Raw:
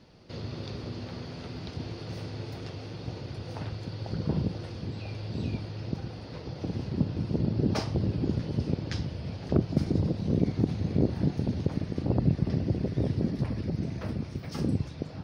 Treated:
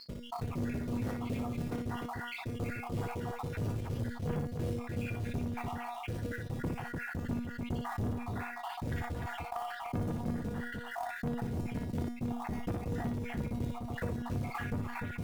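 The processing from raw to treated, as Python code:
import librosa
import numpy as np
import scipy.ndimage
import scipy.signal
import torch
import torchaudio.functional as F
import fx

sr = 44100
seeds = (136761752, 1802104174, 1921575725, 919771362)

p1 = fx.spec_dropout(x, sr, seeds[0], share_pct=77)
p2 = scipy.signal.sosfilt(scipy.signal.butter(4, 2300.0, 'lowpass', fs=sr, output='sos'), p1)
p3 = fx.low_shelf(p2, sr, hz=230.0, db=6.0)
p4 = fx.rider(p3, sr, range_db=3, speed_s=2.0)
p5 = p3 + (p4 * 10.0 ** (0.0 / 20.0))
p6 = fx.quant_float(p5, sr, bits=2)
p7 = fx.tube_stage(p6, sr, drive_db=26.0, bias=0.25)
p8 = fx.comb_fb(p7, sr, f0_hz=240.0, decay_s=0.29, harmonics='all', damping=0.0, mix_pct=80)
p9 = p8 * (1.0 - 0.7 / 2.0 + 0.7 / 2.0 * np.cos(2.0 * np.pi * 3.0 * (np.arange(len(p8)) / sr)))
p10 = fx.echo_multitap(p9, sr, ms=(59, 298), db=(-8.5, -13.0))
p11 = fx.env_flatten(p10, sr, amount_pct=70)
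y = p11 * 10.0 ** (6.5 / 20.0)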